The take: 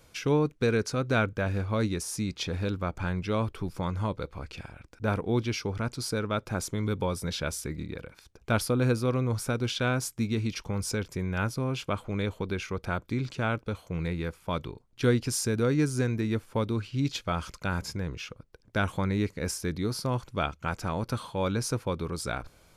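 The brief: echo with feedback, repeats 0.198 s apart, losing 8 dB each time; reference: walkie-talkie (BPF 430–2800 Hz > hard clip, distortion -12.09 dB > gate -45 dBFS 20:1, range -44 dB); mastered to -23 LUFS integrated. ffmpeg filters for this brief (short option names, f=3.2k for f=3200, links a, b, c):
-af "highpass=430,lowpass=2.8k,aecho=1:1:198|396|594|792|990:0.398|0.159|0.0637|0.0255|0.0102,asoftclip=type=hard:threshold=-25.5dB,agate=range=-44dB:threshold=-45dB:ratio=20,volume=13dB"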